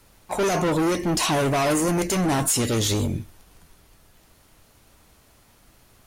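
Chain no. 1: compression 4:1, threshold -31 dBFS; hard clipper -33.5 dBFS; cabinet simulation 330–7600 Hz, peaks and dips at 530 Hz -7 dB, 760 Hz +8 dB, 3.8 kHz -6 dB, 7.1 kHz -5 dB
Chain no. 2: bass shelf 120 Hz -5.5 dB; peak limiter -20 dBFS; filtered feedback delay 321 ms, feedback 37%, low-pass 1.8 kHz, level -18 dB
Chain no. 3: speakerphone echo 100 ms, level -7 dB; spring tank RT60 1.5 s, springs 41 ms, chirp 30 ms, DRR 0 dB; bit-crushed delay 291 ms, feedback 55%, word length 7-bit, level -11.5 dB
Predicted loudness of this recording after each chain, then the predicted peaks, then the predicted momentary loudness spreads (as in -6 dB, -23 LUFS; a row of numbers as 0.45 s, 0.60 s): -37.5 LUFS, -26.5 LUFS, -19.5 LUFS; -25.0 dBFS, -19.0 dBFS, -7.0 dBFS; 8 LU, 6 LU, 14 LU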